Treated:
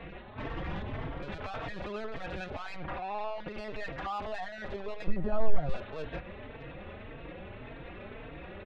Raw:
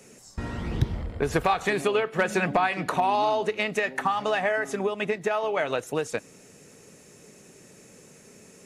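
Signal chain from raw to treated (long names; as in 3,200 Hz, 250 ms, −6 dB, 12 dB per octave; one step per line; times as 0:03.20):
compressor on every frequency bin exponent 0.6
high-pass filter 50 Hz 12 dB per octave
brickwall limiter −17 dBFS, peak gain reduction 9.5 dB
linear-prediction vocoder at 8 kHz pitch kept
soft clipping −24 dBFS, distortion −9 dB
0:02.75–0:03.49: low-pass filter 2,500 Hz → 4,600 Hz 12 dB per octave
0:05.07–0:05.69: spectral tilt −4.5 dB per octave
barber-pole flanger 3.9 ms +1.8 Hz
level −4 dB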